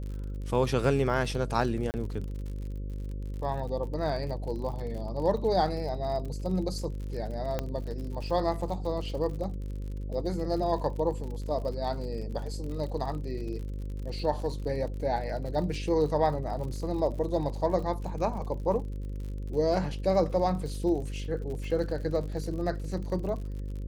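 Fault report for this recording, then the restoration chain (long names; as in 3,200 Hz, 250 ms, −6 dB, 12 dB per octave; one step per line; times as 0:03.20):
mains buzz 50 Hz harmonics 11 −35 dBFS
surface crackle 59 per second −38 dBFS
0:01.91–0:01.94: drop-out 29 ms
0:07.59: click −16 dBFS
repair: click removal
hum removal 50 Hz, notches 11
repair the gap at 0:01.91, 29 ms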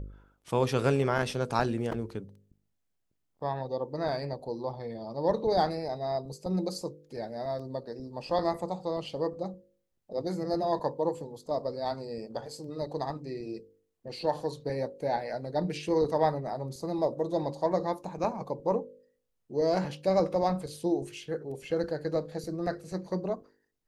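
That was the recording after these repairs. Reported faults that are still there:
0:07.59: click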